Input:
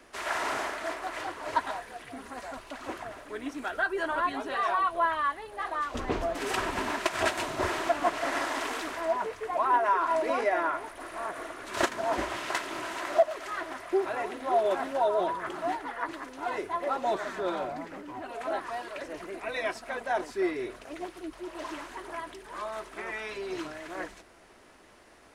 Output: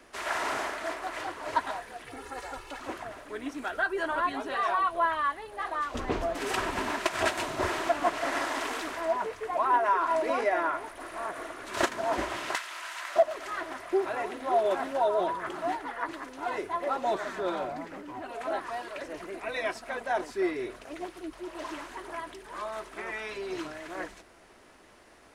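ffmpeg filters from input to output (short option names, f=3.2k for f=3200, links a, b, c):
-filter_complex "[0:a]asettb=1/sr,asplit=3[a][b][c];[a]atrim=end=2.064[d];[b]atrim=start=2.06:end=2.8,asetpts=PTS-STARTPTS,afade=t=in:d=0.004:c=qsin,afade=t=out:st=0.736:d=0.004:c=qsin,aecho=1:1:2.3:0.77,atrim=end_sample=32634[e];[c]atrim=start=2.796[f];[d][e]acrossfade=d=0.004:c1=hsin:c2=qsin[g];[g][f]acrossfade=d=0.004:c1=qsin:c2=hsin,asettb=1/sr,asplit=3[h][i][j];[h]atrim=end=12.554[k];[i]atrim=start=12.55:end=13.16,asetpts=PTS-STARTPTS,afade=t=in:d=0.004:c=qsin,afade=t=out:st=0.606:d=0.004:c=qsin,highpass=1.2k[l];[j]atrim=start=13.156[m];[k][l]acrossfade=d=0.004:c1=hsin:c2=qsin[n];[n][m]acrossfade=d=0.004:c1=qsin:c2=hsin"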